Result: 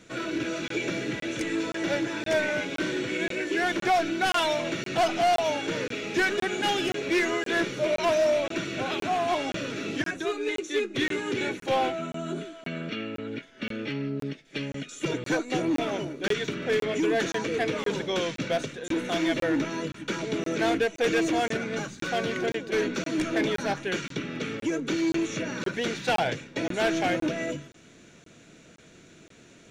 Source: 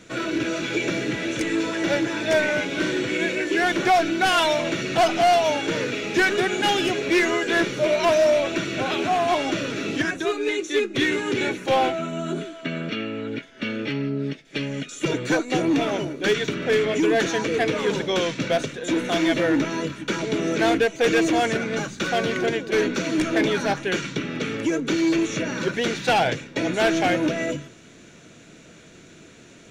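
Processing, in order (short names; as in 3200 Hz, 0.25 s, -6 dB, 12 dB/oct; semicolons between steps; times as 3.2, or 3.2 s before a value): crackling interface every 0.52 s, samples 1024, zero, from 0.68; gain -5 dB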